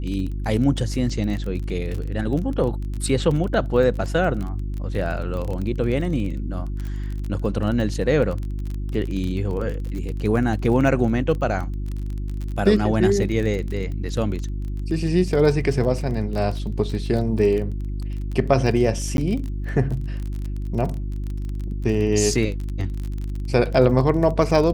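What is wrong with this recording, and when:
surface crackle 25 per second −27 dBFS
mains hum 50 Hz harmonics 7 −27 dBFS
0:19.17–0:19.18: drop-out

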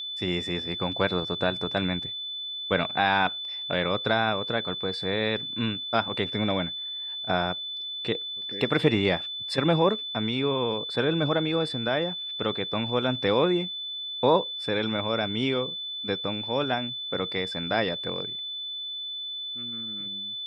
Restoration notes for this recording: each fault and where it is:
whistle 3,500 Hz −32 dBFS

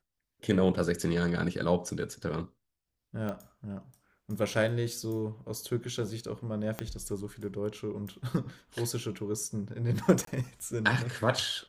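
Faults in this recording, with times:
0:03.29: click −23 dBFS
0:06.79: click −18 dBFS
0:10.25–0:10.27: drop-out 23 ms

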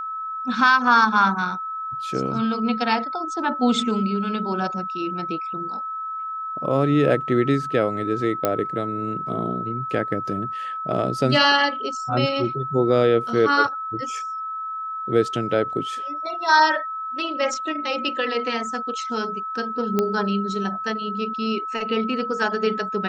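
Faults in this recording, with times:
whistle 1,300 Hz −27 dBFS
0:08.45: click −6 dBFS
0:19.99: click −8 dBFS

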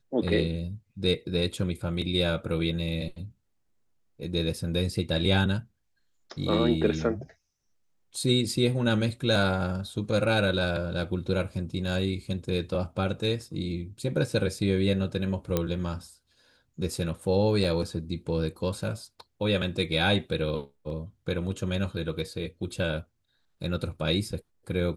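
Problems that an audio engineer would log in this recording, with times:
0:15.57: click −11 dBFS
0:17.64: drop-out 3.8 ms

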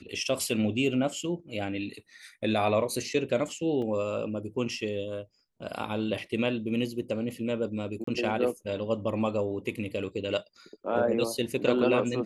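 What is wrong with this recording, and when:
0:03.82: drop-out 2.7 ms
0:08.04–0:08.07: drop-out 34 ms

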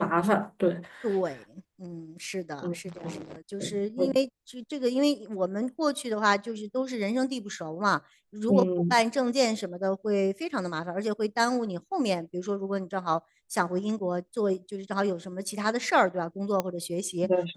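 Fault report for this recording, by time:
0:16.60: click −13 dBFS

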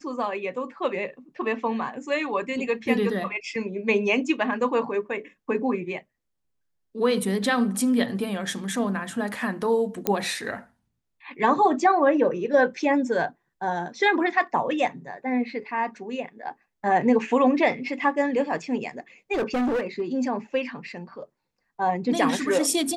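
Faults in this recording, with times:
0:10.07: click −6 dBFS
0:19.33–0:20.02: clipping −21.5 dBFS

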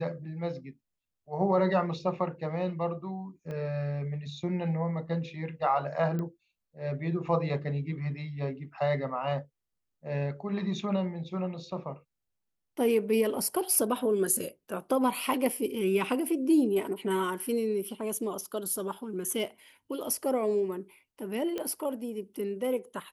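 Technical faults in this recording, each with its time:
0:03.51: click −28 dBFS
0:06.19: click −23 dBFS
0:21.58: click −20 dBFS

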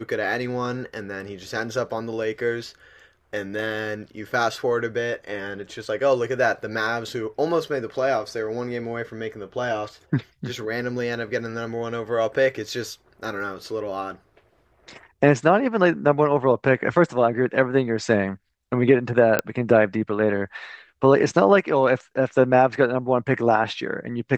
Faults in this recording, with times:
0:19.39: click −5 dBFS

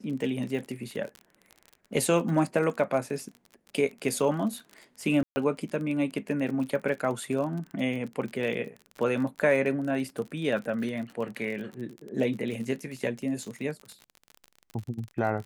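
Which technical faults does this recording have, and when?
surface crackle 37 per second −34 dBFS
0:05.23–0:05.36: drop-out 130 ms

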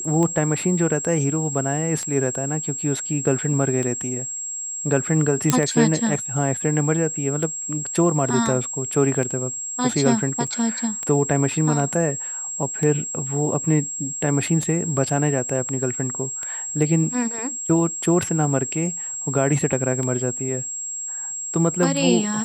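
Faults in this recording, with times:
scratch tick 33 1/3 rpm −14 dBFS
whistle 7,600 Hz −27 dBFS
0:05.50: click −1 dBFS
0:10.47: drop-out 4.1 ms

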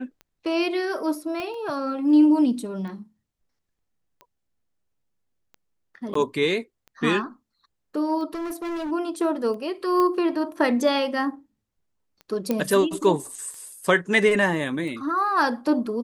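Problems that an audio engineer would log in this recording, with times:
scratch tick 45 rpm −29 dBFS
0:01.40: click −18 dBFS
0:06.14–0:06.15: drop-out 14 ms
0:08.34–0:08.92: clipping −27.5 dBFS
0:10.00: click −13 dBFS
0:12.51: click −11 dBFS

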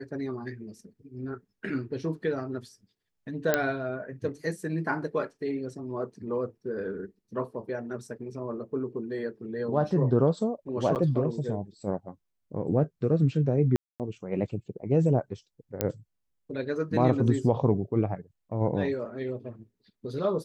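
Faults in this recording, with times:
0:03.54: click −8 dBFS
0:10.95–0:10.96: drop-out 8.6 ms
0:13.76–0:14.00: drop-out 238 ms
0:15.81: click −10 dBFS

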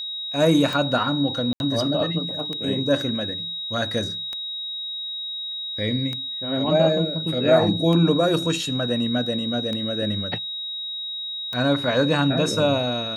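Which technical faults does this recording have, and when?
scratch tick 33 1/3 rpm
whistle 3,800 Hz −28 dBFS
0:01.53–0:01.60: drop-out 71 ms

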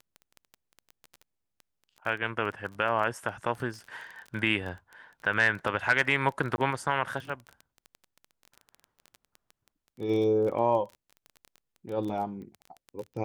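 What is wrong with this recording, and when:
surface crackle 17 per second −35 dBFS
0:06.56–0:06.58: drop-out 20 ms

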